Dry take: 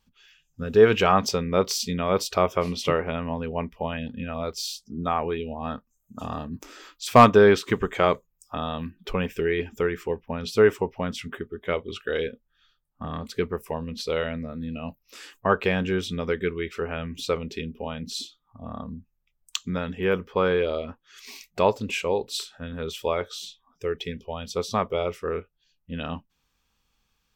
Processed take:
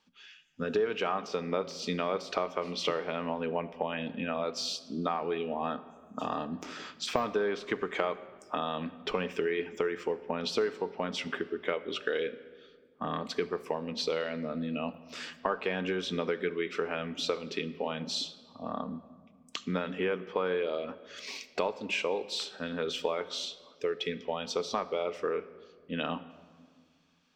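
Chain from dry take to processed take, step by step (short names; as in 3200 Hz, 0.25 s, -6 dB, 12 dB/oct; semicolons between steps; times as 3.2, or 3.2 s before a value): de-esser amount 70%; three-band isolator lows -23 dB, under 200 Hz, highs -20 dB, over 6700 Hz; compressor 6:1, threshold -31 dBFS, peak gain reduction 18.5 dB; shoebox room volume 2500 m³, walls mixed, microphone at 0.47 m; gain +3 dB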